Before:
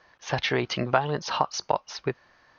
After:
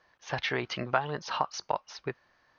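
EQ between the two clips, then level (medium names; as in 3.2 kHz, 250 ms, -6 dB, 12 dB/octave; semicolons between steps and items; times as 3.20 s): dynamic bell 1.6 kHz, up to +5 dB, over -37 dBFS, Q 0.72; -7.5 dB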